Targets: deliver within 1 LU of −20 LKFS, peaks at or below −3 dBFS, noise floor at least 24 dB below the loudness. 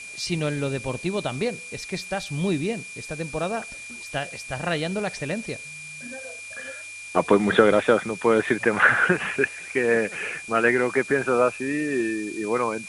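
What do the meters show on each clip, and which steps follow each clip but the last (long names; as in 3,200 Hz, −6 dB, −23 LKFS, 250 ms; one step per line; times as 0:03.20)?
interfering tone 2,400 Hz; level of the tone −37 dBFS; background noise floor −39 dBFS; target noise floor −48 dBFS; integrated loudness −24.0 LKFS; sample peak −2.0 dBFS; target loudness −20.0 LKFS
→ notch filter 2,400 Hz, Q 30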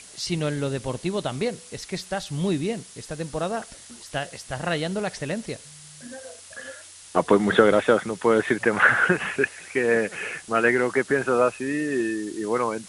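interfering tone none found; background noise floor −46 dBFS; target noise floor −48 dBFS
→ noise reduction from a noise print 6 dB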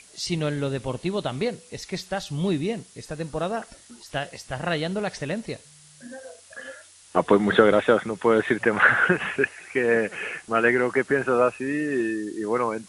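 background noise floor −51 dBFS; integrated loudness −24.0 LKFS; sample peak −2.0 dBFS; target loudness −20.0 LKFS
→ level +4 dB
brickwall limiter −3 dBFS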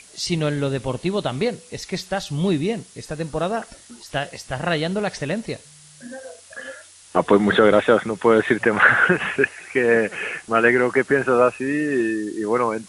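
integrated loudness −20.5 LKFS; sample peak −3.0 dBFS; background noise floor −47 dBFS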